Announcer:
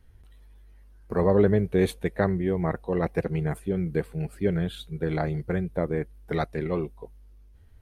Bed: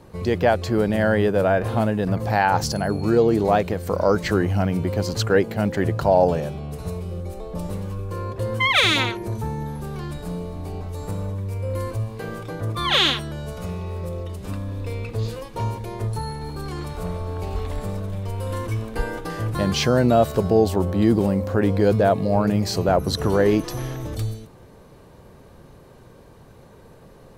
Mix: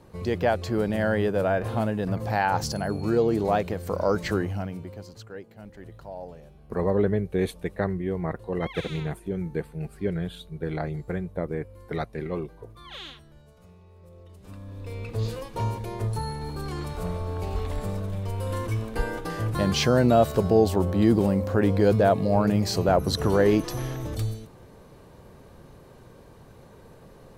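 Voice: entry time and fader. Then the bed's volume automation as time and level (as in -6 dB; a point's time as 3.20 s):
5.60 s, -3.0 dB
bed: 4.34 s -5 dB
5.26 s -22.5 dB
13.95 s -22.5 dB
15.23 s -2 dB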